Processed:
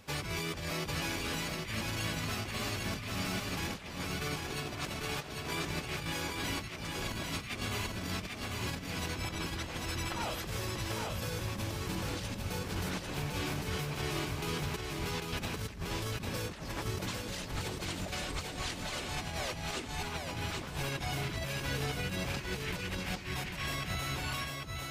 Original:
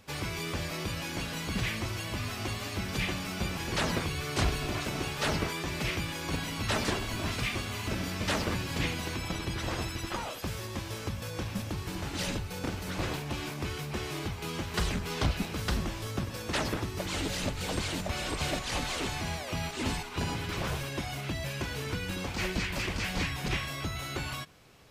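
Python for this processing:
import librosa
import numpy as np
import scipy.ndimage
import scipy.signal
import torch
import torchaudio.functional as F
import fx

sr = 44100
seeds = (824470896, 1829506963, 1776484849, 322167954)

p1 = fx.highpass(x, sr, hz=fx.line((4.35, 210.0), (4.75, 60.0)), slope=12, at=(4.35, 4.75), fade=0.02)
p2 = fx.over_compress(p1, sr, threshold_db=-36.0, ratio=-0.5)
p3 = p2 + fx.echo_single(p2, sr, ms=797, db=-3.5, dry=0)
y = p3 * 10.0 ** (-2.0 / 20.0)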